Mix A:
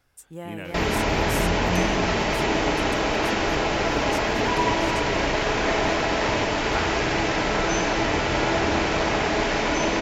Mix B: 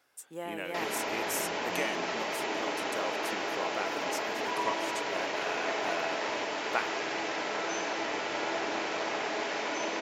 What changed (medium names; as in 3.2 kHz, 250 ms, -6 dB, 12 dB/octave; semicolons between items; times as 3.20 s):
background -9.0 dB; master: add high-pass 350 Hz 12 dB/octave